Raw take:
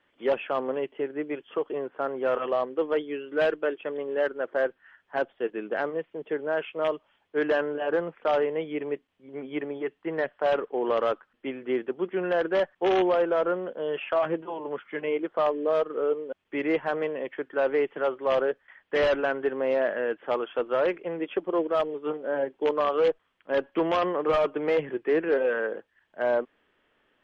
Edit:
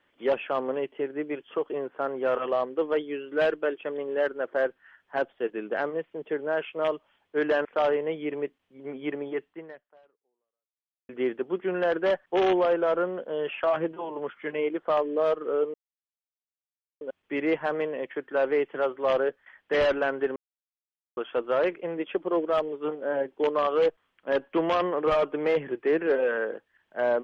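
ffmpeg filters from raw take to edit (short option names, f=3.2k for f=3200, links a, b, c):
-filter_complex "[0:a]asplit=6[a][b][c][d][e][f];[a]atrim=end=7.652[g];[b]atrim=start=8.138:end=11.58,asetpts=PTS-STARTPTS,afade=t=out:st=1.792:d=1.65:c=exp[h];[c]atrim=start=11.58:end=16.23,asetpts=PTS-STARTPTS,afade=t=in:d=0.004:c=hsin,afade=t=out:st=4.646:d=0.004:c=hsin,apad=pad_dur=1.27[i];[d]atrim=start=16.23:end=19.58,asetpts=PTS-STARTPTS,afade=t=in:d=0.004:c=hsin,afade=t=out:st=3.346:d=0.004:c=hsin[j];[e]atrim=start=19.58:end=20.39,asetpts=PTS-STARTPTS,volume=0[k];[f]atrim=start=20.39,asetpts=PTS-STARTPTS,afade=t=in:d=0.004:c=hsin[l];[h][i][j][k][l]concat=n=5:v=0:a=1[m];[g][m]acrossfade=d=0.004:c1=hsin:c2=hsin"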